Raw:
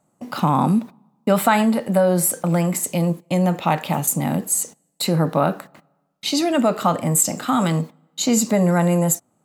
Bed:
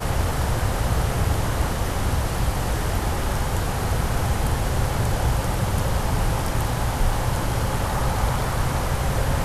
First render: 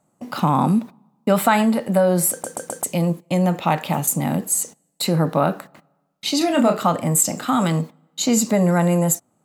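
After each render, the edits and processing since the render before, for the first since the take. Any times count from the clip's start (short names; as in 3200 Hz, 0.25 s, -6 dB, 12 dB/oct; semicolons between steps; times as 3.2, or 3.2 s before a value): 2.31 stutter in place 0.13 s, 4 plays; 6.38–6.78 doubler 30 ms -5 dB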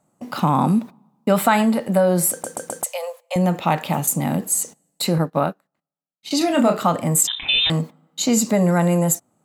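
2.84–3.36 Chebyshev high-pass 490 Hz, order 8; 5.18–6.31 upward expander 2.5:1, over -35 dBFS; 7.27–7.7 inverted band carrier 3800 Hz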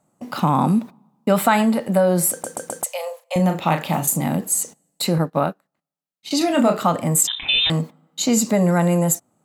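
2.95–4.28 doubler 37 ms -7.5 dB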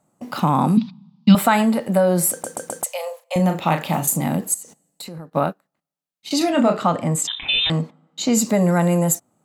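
0.77–1.35 EQ curve 100 Hz 0 dB, 180 Hz +14 dB, 430 Hz -19 dB, 610 Hz -16 dB, 910 Hz -5 dB, 1700 Hz -5 dB, 3300 Hz +13 dB, 4800 Hz +14 dB, 7200 Hz -11 dB, 11000 Hz -29 dB; 4.54–5.32 compressor 4:1, threshold -34 dBFS; 6.5–8.35 air absorption 61 m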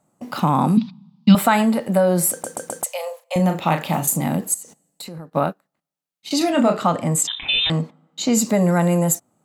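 6.45–7.22 high shelf 9500 Hz -> 5600 Hz +5.5 dB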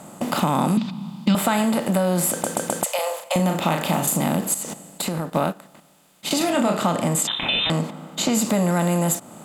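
per-bin compression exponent 0.6; compressor 2:1, threshold -22 dBFS, peak gain reduction 9 dB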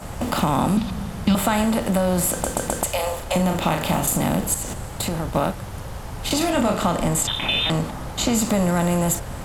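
add bed -10.5 dB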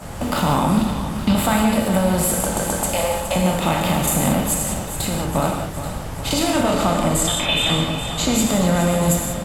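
feedback echo 0.416 s, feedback 59%, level -11 dB; non-linear reverb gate 0.21 s flat, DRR 1.5 dB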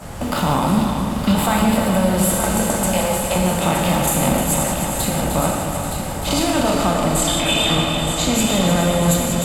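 multi-head echo 0.306 s, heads first and third, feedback 55%, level -8 dB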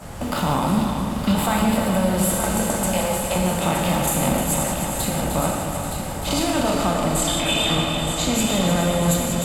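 gain -3 dB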